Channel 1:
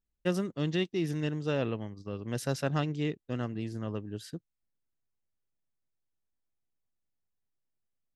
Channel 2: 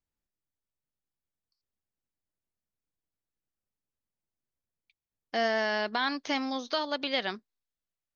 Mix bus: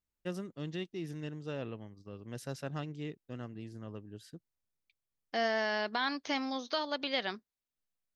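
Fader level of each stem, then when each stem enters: −9.0, −3.5 decibels; 0.00, 0.00 seconds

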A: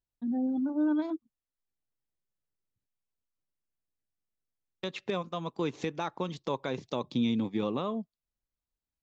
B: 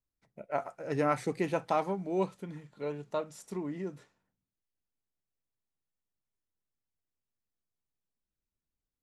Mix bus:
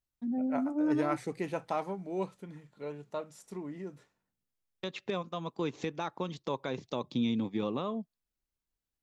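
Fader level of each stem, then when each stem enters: −2.0, −4.0 decibels; 0.00, 0.00 seconds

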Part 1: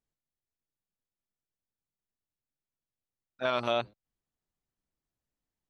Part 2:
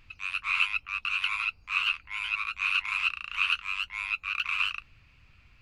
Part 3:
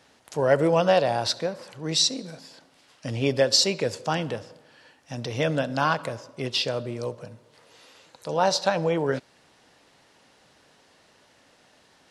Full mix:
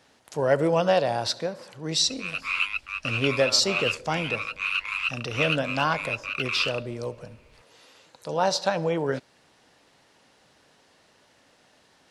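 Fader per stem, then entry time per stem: −7.5, 0.0, −1.5 decibels; 0.00, 2.00, 0.00 seconds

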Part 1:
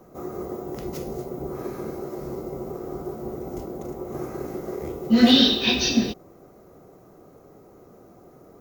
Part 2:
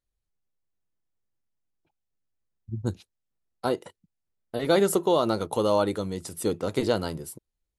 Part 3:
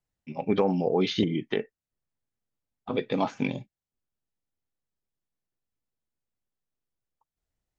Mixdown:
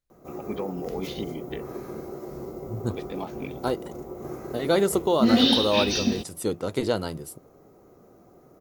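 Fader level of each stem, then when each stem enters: −4.0, −0.5, −8.5 decibels; 0.10, 0.00, 0.00 seconds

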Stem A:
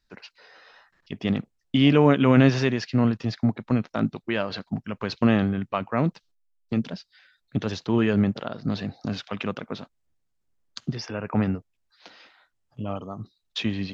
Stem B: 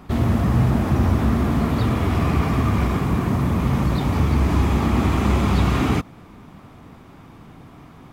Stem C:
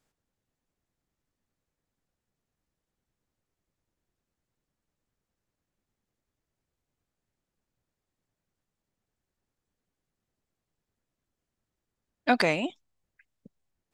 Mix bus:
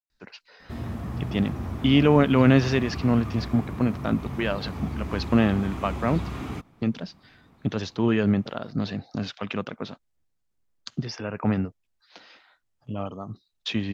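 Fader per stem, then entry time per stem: −0.5 dB, −14.0 dB, muted; 0.10 s, 0.60 s, muted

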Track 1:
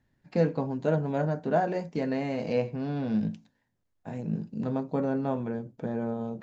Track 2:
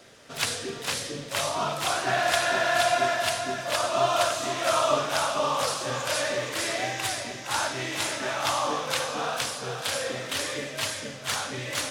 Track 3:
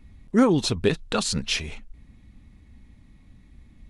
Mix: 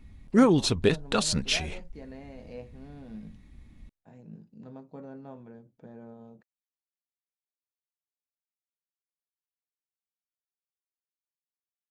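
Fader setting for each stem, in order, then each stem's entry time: −15.5 dB, muted, −1.0 dB; 0.00 s, muted, 0.00 s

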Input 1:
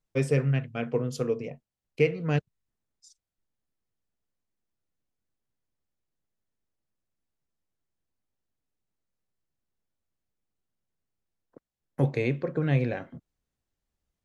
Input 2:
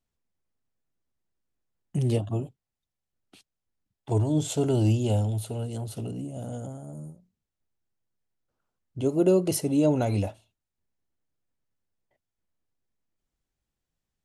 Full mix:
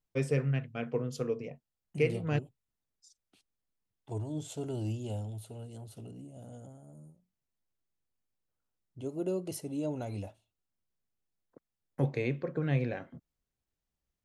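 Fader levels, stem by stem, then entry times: −5.0, −12.5 decibels; 0.00, 0.00 seconds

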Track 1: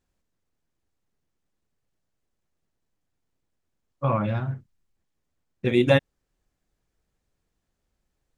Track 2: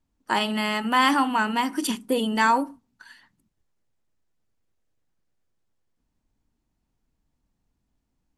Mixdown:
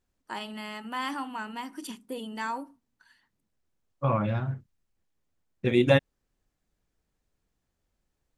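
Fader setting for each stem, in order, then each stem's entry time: −2.0, −13.0 decibels; 0.00, 0.00 seconds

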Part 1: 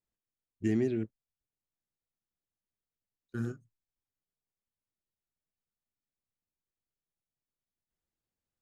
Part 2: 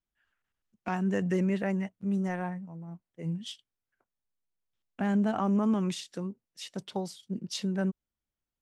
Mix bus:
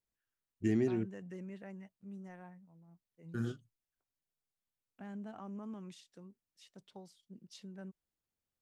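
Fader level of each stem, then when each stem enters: −2.0, −18.5 decibels; 0.00, 0.00 seconds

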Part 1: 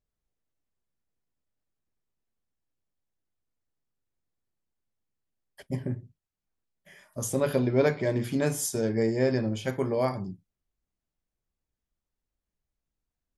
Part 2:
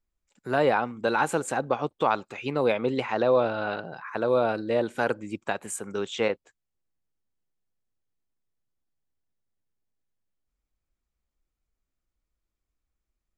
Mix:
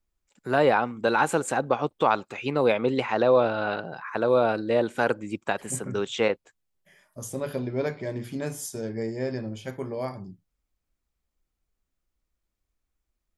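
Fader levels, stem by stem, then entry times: −5.0, +2.0 decibels; 0.00, 0.00 seconds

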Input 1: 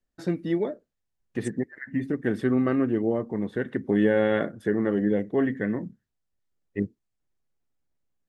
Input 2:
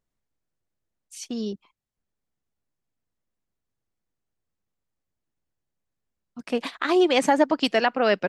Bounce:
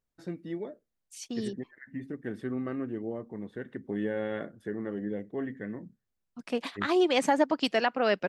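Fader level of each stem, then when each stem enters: −10.5, −5.0 decibels; 0.00, 0.00 seconds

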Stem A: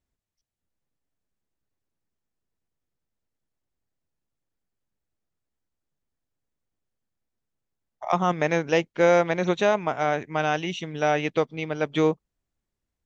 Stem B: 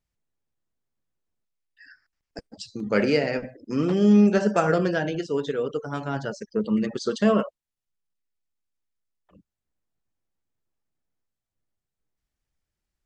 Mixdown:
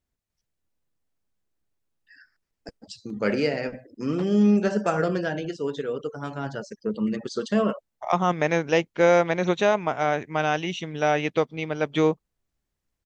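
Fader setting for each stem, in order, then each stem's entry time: +0.5, −2.5 decibels; 0.00, 0.30 seconds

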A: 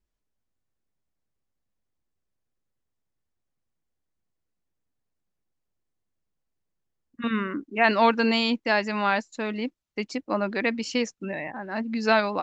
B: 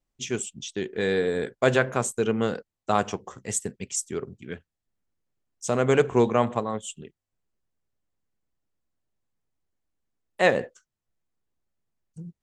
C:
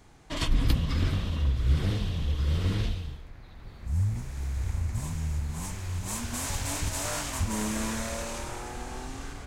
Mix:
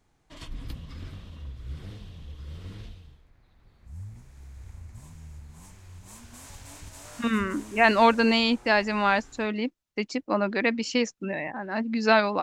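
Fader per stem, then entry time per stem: +1.0 dB, muted, −13.5 dB; 0.00 s, muted, 0.00 s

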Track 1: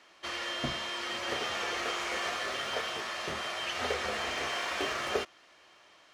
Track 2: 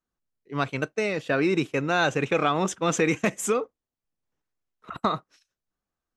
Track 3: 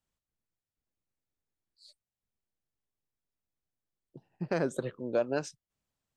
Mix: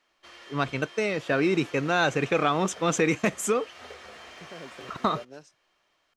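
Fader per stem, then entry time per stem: −12.0, −0.5, −14.0 decibels; 0.00, 0.00, 0.00 seconds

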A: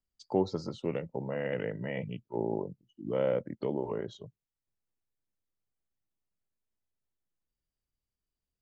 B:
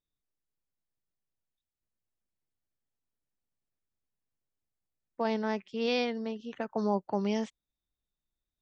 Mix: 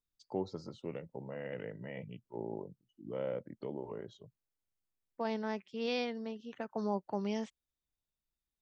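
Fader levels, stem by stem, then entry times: −8.5, −5.5 decibels; 0.00, 0.00 seconds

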